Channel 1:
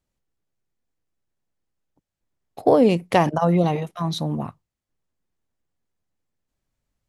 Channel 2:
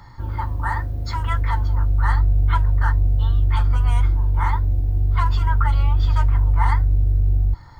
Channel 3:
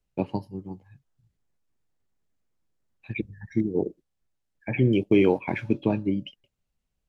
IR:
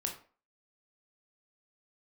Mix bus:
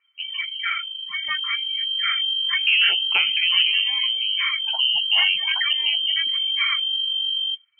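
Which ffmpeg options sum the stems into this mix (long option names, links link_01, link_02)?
-filter_complex "[0:a]volume=-3.5dB,asplit=2[link_01][link_02];[link_02]volume=-14dB[link_03];[1:a]lowshelf=frequency=360:gain=-9.5,volume=1dB[link_04];[2:a]dynaudnorm=framelen=200:gausssize=11:maxgain=9dB,volume=-7dB[link_05];[link_03]aecho=0:1:85:1[link_06];[link_01][link_04][link_05][link_06]amix=inputs=4:normalize=0,afftdn=noise_reduction=26:noise_floor=-31,asoftclip=type=tanh:threshold=-5.5dB,lowpass=frequency=2700:width_type=q:width=0.5098,lowpass=frequency=2700:width_type=q:width=0.6013,lowpass=frequency=2700:width_type=q:width=0.9,lowpass=frequency=2700:width_type=q:width=2.563,afreqshift=-3200"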